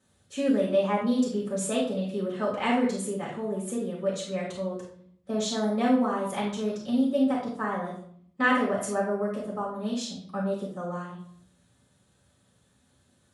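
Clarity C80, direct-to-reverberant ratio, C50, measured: 8.0 dB, −8.0 dB, 3.0 dB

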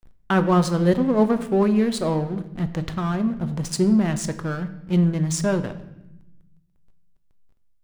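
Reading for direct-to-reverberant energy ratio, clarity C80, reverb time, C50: 9.0 dB, 15.0 dB, 0.90 s, 13.0 dB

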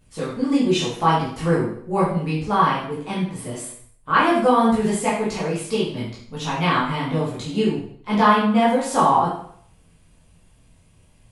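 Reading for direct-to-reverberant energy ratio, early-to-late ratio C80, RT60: −8.5 dB, 7.0 dB, 0.60 s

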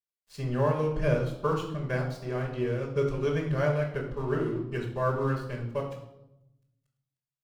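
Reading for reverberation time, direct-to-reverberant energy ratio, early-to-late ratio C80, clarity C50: 0.90 s, −9.5 dB, 9.0 dB, 6.0 dB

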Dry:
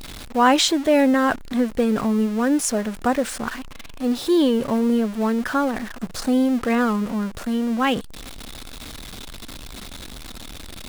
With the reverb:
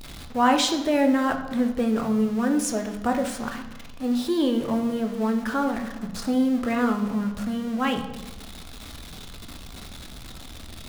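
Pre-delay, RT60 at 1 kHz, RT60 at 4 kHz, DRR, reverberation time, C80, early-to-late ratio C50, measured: 3 ms, 1.0 s, 0.75 s, 4.5 dB, 1.1 s, 11.5 dB, 9.0 dB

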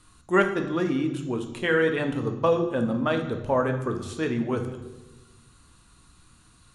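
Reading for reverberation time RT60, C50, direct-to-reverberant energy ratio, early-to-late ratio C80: 1.1 s, 9.0 dB, 5.0 dB, 11.0 dB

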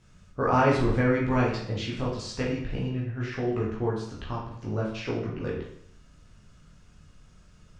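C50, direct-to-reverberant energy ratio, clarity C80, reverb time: 3.0 dB, −5.5 dB, 7.0 dB, 0.65 s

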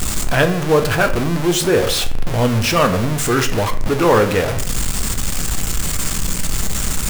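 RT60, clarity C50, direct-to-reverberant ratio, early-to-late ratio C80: 0.50 s, 11.5 dB, 5.5 dB, 15.0 dB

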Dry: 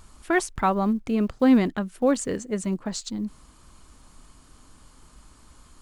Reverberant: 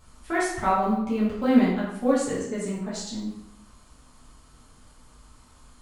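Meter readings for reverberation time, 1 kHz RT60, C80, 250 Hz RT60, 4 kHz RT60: 0.80 s, 0.85 s, 5.0 dB, 0.85 s, 0.65 s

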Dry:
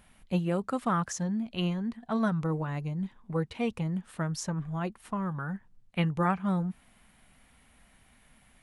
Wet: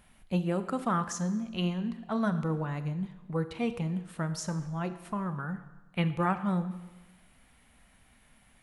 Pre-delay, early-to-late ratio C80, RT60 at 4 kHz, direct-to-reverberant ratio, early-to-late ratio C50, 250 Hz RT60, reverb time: 27 ms, 14.0 dB, 1.0 s, 10.5 dB, 12.5 dB, 1.1 s, 1.1 s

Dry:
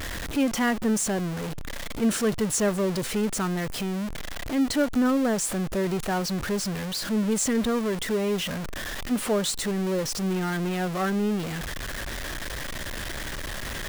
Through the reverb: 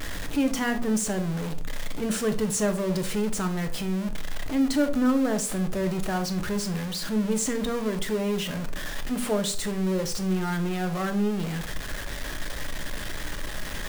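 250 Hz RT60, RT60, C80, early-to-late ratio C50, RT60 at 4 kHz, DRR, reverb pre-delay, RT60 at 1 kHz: 0.60 s, 0.45 s, 18.0 dB, 13.0 dB, 0.30 s, 7.0 dB, 3 ms, 0.40 s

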